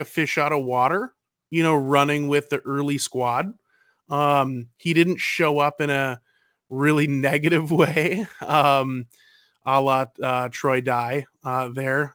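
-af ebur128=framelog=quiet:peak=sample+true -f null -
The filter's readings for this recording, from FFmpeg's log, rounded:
Integrated loudness:
  I:         -21.8 LUFS
  Threshold: -32.3 LUFS
Loudness range:
  LRA:         2.0 LU
  Threshold: -42.2 LUFS
  LRA low:   -23.3 LUFS
  LRA high:  -21.2 LUFS
Sample peak:
  Peak:       -3.3 dBFS
True peak:
  Peak:       -3.3 dBFS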